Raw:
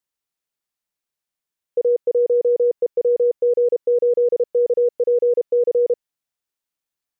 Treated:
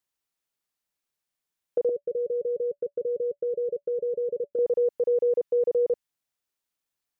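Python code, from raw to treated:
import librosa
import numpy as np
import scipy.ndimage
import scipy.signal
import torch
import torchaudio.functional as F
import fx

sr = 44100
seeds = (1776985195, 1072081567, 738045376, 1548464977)

y = fx.cheby_ripple(x, sr, hz=590.0, ripple_db=6, at=(1.89, 4.59))
y = fx.dynamic_eq(y, sr, hz=460.0, q=1.2, threshold_db=-31.0, ratio=4.0, max_db=-6)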